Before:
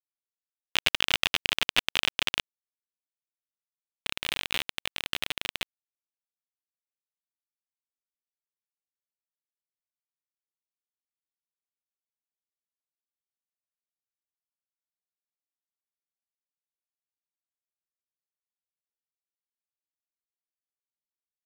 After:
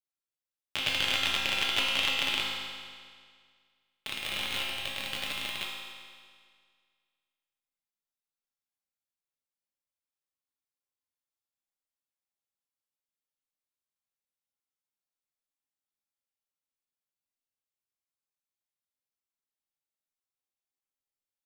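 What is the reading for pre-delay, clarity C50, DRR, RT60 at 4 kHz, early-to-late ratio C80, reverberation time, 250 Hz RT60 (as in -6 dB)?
4 ms, 0.0 dB, -4.0 dB, 1.8 s, 1.5 dB, 1.9 s, 1.9 s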